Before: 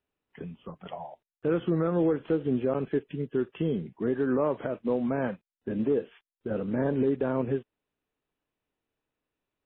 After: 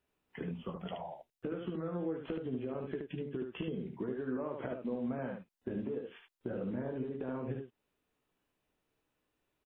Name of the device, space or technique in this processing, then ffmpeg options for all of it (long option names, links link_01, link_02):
serial compression, leveller first: -filter_complex "[0:a]acompressor=threshold=-29dB:ratio=3,acompressor=threshold=-39dB:ratio=6,asettb=1/sr,asplit=3[link_01][link_02][link_03];[link_01]atrim=end=0.714[link_04];[link_02]atrim=start=0.71:end=1.46,asetpts=PTS-STARTPTS,afade=type=in:duration=0.004:curve=qsin,afade=type=out:start_time=0.746:duration=0.004:curve=qsin,equalizer=frequency=1100:width=0.77:gain=-4.5[link_05];[link_03]atrim=start=1.456[link_06];[link_04][link_05]acrossfade=duration=0.004:curve1=hsin:curve2=qsin[link_07];[link_07][link_06]acrossfade=duration=0.004:curve1=qsin:curve2=hsin,aecho=1:1:16|74:0.447|0.596,volume=2dB"